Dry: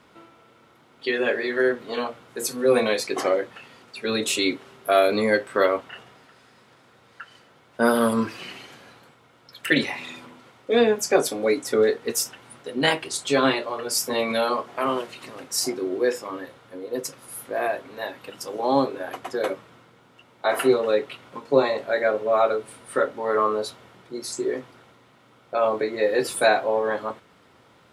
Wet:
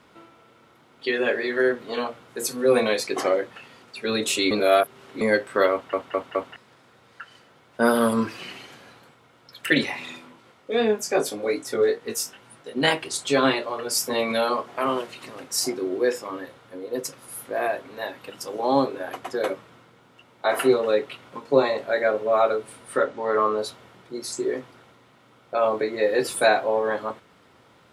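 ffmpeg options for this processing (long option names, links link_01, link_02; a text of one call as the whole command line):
ffmpeg -i in.wav -filter_complex "[0:a]asplit=3[link_01][link_02][link_03];[link_01]afade=type=out:start_time=10.17:duration=0.02[link_04];[link_02]flanger=delay=18:depth=3:speed=2.4,afade=type=in:start_time=10.17:duration=0.02,afade=type=out:start_time=12.75:duration=0.02[link_05];[link_03]afade=type=in:start_time=12.75:duration=0.02[link_06];[link_04][link_05][link_06]amix=inputs=3:normalize=0,asettb=1/sr,asplit=3[link_07][link_08][link_09];[link_07]atrim=end=22.974[link_10];[link_08]atrim=start=22.97:end=23.58,asetpts=PTS-STARTPTS,afade=type=in:duration=0.004:curve=qsin,afade=type=out:start_time=0.606:duration=0.004:curve=qsin,lowpass=frequency=8100:width=0.5412,lowpass=frequency=8100:width=1.3066[link_11];[link_09]atrim=start=23.576[link_12];[link_10][link_11]acrossfade=duration=0.004:curve1=hsin:curve2=qsin[link_13];[link_13][link_12]acrossfade=duration=0.004:curve1=qsin:curve2=hsin,asplit=7[link_14][link_15][link_16][link_17][link_18][link_19][link_20];[link_14]atrim=end=4.512[link_21];[link_15]atrim=start=4.508:end=5.212,asetpts=PTS-STARTPTS,areverse[link_22];[link_16]atrim=start=5.208:end=5.932[link_23];[link_17]atrim=start=5.718:end=5.932[link_24];[link_18]atrim=start=5.718:end=5.932[link_25];[link_19]atrim=start=5.718:end=5.932[link_26];[link_20]atrim=start=6.558[link_27];[link_21][link_22]acrossfade=duration=0.004:curve1=hsin:curve2=hsin[link_28];[link_28][link_23]acrossfade=duration=0.004:curve1=hsin:curve2=hsin[link_29];[link_29][link_24]acrossfade=duration=0.004:curve1=hsin:curve2=hsin[link_30];[link_30][link_25]acrossfade=duration=0.004:curve1=hsin:curve2=hsin[link_31];[link_31][link_26]acrossfade=duration=0.004:curve1=hsin:curve2=hsin[link_32];[link_32][link_27]acrossfade=duration=0.004:curve1=hsin:curve2=hsin" out.wav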